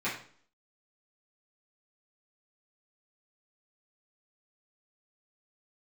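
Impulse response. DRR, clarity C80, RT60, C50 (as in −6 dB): −11.0 dB, 10.5 dB, 0.50 s, 6.0 dB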